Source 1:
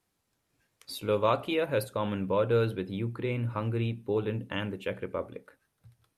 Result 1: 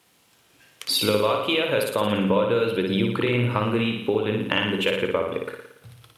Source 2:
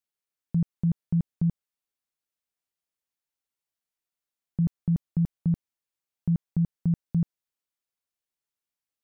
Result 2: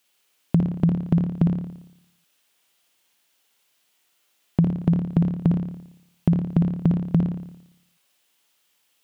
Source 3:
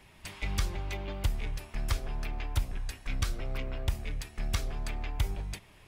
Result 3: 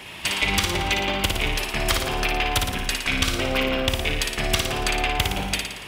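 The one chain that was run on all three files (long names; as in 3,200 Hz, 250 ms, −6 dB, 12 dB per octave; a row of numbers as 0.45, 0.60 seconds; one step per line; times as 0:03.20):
high-pass filter 230 Hz 6 dB per octave
parametric band 3,000 Hz +6.5 dB 0.62 octaves
downward compressor 12 to 1, threshold −36 dBFS
flutter between parallel walls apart 9.8 metres, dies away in 0.79 s
loudness normalisation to −23 LKFS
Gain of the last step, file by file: +16.5, +20.0, +17.5 decibels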